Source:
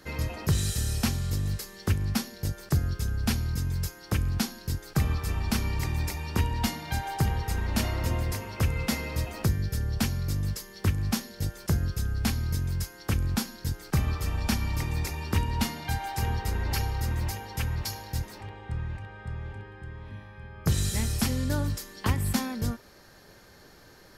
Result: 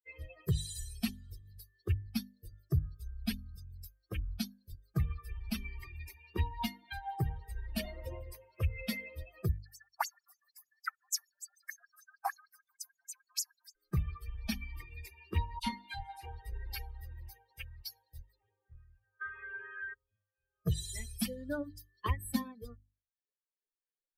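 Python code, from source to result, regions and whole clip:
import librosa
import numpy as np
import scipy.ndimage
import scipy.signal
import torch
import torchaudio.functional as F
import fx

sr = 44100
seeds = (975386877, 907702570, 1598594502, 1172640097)

y = fx.chain(x, sr, fx.peak_eq(hz=3200.0, db=-14.0, octaves=0.85),
    fx.filter_lfo_highpass(shape='sine', hz=6.6, low_hz=770.0, high_hz=7200.0, q=5.6),
    fx.echo_banded(ms=65, feedback_pct=74, hz=1400.0, wet_db=-16.0), at=(9.58, 13.76))
y = fx.chain(y, sr, fx.cvsd(bps=64000),
    fx.doubler(ms=35.0, db=-5.0),
    fx.dispersion(late='lows', ms=52.0, hz=2300.0), at=(15.59, 16.26))
y = fx.chain(y, sr, fx.peak_eq(hz=1900.0, db=14.5, octaves=2.2),
    fx.small_body(hz=(430.0, 1000.0, 2900.0), ring_ms=30, db=7),
    fx.band_squash(depth_pct=100), at=(19.21, 19.94))
y = fx.bin_expand(y, sr, power=3.0)
y = fx.hum_notches(y, sr, base_hz=50, count=6)
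y = fx.dynamic_eq(y, sr, hz=960.0, q=1.6, threshold_db=-55.0, ratio=4.0, max_db=3)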